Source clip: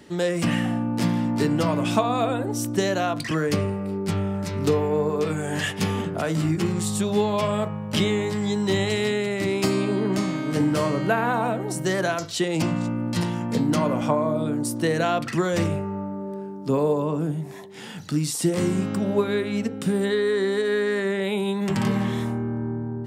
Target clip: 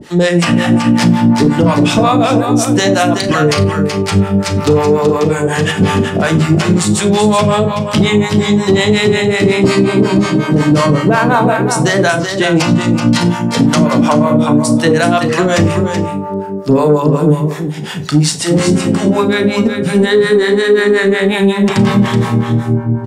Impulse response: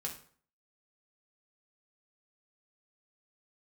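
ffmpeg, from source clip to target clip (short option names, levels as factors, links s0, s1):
-filter_complex "[0:a]acrossover=split=9600[s0][s1];[s1]acompressor=threshold=0.001:ratio=4:attack=1:release=60[s2];[s0][s2]amix=inputs=2:normalize=0,acrossover=split=600[s3][s4];[s3]aeval=exprs='val(0)*(1-1/2+1/2*cos(2*PI*5.5*n/s))':c=same[s5];[s4]aeval=exprs='val(0)*(1-1/2-1/2*cos(2*PI*5.5*n/s))':c=same[s6];[s5][s6]amix=inputs=2:normalize=0,asoftclip=type=tanh:threshold=0.15,aecho=1:1:378:0.422,asplit=2[s7][s8];[1:a]atrim=start_sample=2205,atrim=end_sample=3087,adelay=34[s9];[s8][s9]afir=irnorm=-1:irlink=0,volume=0.335[s10];[s7][s10]amix=inputs=2:normalize=0,alimiter=level_in=8.41:limit=0.891:release=50:level=0:latency=1,volume=0.891"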